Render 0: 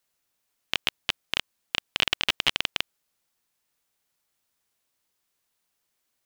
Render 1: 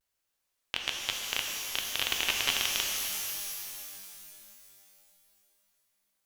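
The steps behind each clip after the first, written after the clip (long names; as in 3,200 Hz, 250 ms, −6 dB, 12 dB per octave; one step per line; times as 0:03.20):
parametric band 180 Hz −6.5 dB 0.96 octaves
pitch vibrato 1.2 Hz 94 cents
reverb with rising layers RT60 2.8 s, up +12 semitones, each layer −2 dB, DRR 1 dB
level −6 dB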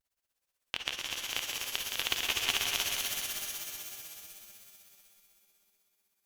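amplitude tremolo 16 Hz, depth 82%
on a send: echo machine with several playback heads 83 ms, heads second and third, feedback 59%, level −7.5 dB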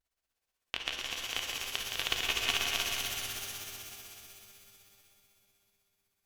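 high-shelf EQ 6,800 Hz −6 dB
on a send at −6.5 dB: convolution reverb RT60 1.7 s, pre-delay 3 ms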